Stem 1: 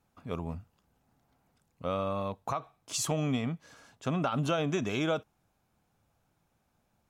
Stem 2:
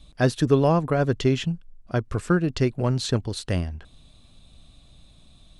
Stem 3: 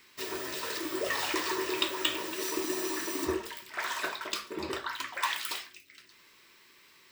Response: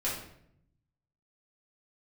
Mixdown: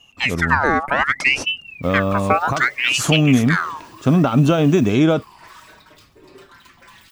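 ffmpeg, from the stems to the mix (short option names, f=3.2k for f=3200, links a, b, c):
-filter_complex "[0:a]lowshelf=f=330:g=9,volume=1.5dB[a];[1:a]aeval=exprs='val(0)*sin(2*PI*1900*n/s+1900*0.5/0.65*sin(2*PI*0.65*n/s))':c=same,volume=-0.5dB[b];[2:a]alimiter=limit=-22.5dB:level=0:latency=1:release=390,volume=33.5dB,asoftclip=hard,volume=-33.5dB,asplit=2[c][d];[d]adelay=5.3,afreqshift=-0.61[e];[c][e]amix=inputs=2:normalize=1,adelay=1650,volume=-13dB[f];[a][b][f]amix=inputs=3:normalize=0,equalizer=f=290:w=1.5:g=4.5,dynaudnorm=f=110:g=5:m=7.5dB"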